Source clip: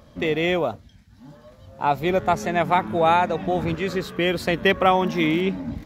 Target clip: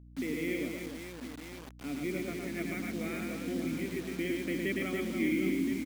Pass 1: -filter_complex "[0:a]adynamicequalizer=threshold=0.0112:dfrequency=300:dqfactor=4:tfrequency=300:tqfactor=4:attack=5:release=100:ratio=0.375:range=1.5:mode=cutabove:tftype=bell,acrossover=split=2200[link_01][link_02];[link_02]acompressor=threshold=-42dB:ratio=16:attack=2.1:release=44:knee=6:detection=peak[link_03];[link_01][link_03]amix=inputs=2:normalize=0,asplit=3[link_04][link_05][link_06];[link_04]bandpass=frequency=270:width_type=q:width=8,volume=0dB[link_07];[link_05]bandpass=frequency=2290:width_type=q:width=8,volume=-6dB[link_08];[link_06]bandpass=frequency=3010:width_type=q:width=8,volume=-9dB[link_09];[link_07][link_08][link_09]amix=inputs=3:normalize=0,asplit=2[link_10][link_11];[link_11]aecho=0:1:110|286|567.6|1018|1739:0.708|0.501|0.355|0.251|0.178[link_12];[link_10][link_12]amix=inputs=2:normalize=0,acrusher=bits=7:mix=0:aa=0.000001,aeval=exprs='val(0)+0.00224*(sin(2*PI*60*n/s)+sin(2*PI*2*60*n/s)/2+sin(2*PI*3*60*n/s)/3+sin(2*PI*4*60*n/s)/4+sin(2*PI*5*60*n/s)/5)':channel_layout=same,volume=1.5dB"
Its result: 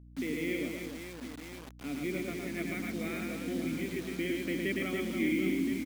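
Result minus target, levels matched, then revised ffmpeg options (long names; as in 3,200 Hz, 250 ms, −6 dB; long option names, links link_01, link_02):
downward compressor: peak gain reduction −6 dB
-filter_complex "[0:a]adynamicequalizer=threshold=0.0112:dfrequency=300:dqfactor=4:tfrequency=300:tqfactor=4:attack=5:release=100:ratio=0.375:range=1.5:mode=cutabove:tftype=bell,acrossover=split=2200[link_01][link_02];[link_02]acompressor=threshold=-48.5dB:ratio=16:attack=2.1:release=44:knee=6:detection=peak[link_03];[link_01][link_03]amix=inputs=2:normalize=0,asplit=3[link_04][link_05][link_06];[link_04]bandpass=frequency=270:width_type=q:width=8,volume=0dB[link_07];[link_05]bandpass=frequency=2290:width_type=q:width=8,volume=-6dB[link_08];[link_06]bandpass=frequency=3010:width_type=q:width=8,volume=-9dB[link_09];[link_07][link_08][link_09]amix=inputs=3:normalize=0,asplit=2[link_10][link_11];[link_11]aecho=0:1:110|286|567.6|1018|1739:0.708|0.501|0.355|0.251|0.178[link_12];[link_10][link_12]amix=inputs=2:normalize=0,acrusher=bits=7:mix=0:aa=0.000001,aeval=exprs='val(0)+0.00224*(sin(2*PI*60*n/s)+sin(2*PI*2*60*n/s)/2+sin(2*PI*3*60*n/s)/3+sin(2*PI*4*60*n/s)/4+sin(2*PI*5*60*n/s)/5)':channel_layout=same,volume=1.5dB"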